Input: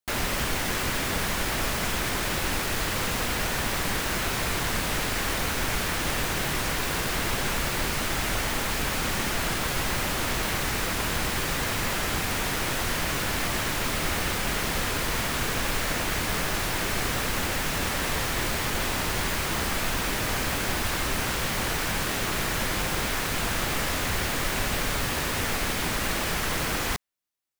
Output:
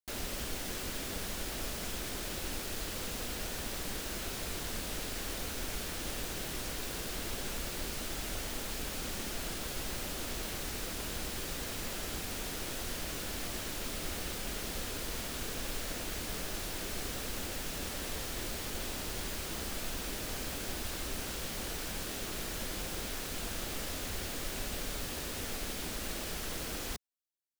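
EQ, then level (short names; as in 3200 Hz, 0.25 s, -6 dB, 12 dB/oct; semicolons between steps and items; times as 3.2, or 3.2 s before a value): graphic EQ 125/1000/2000 Hz -7/-7/-6 dB; -8.5 dB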